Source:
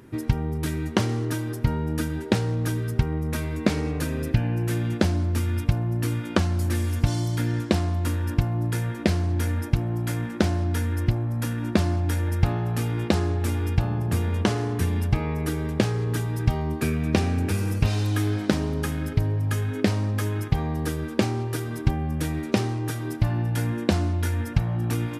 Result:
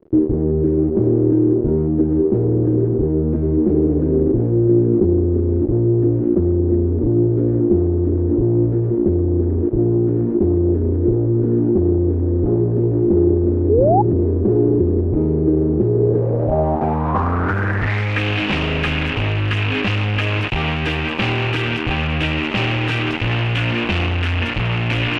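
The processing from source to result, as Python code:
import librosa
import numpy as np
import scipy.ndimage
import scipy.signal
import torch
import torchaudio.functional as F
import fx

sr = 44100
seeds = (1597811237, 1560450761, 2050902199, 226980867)

y = fx.dmg_crackle(x, sr, seeds[0], per_s=160.0, level_db=-30.0)
y = fx.fuzz(y, sr, gain_db=39.0, gate_db=-34.0)
y = fx.filter_sweep_lowpass(y, sr, from_hz=370.0, to_hz=2700.0, start_s=15.92, end_s=18.29, q=5.8)
y = fx.spec_paint(y, sr, seeds[1], shape='rise', start_s=13.69, length_s=0.33, low_hz=390.0, high_hz=870.0, level_db=-10.0)
y = y * librosa.db_to_amplitude(-4.5)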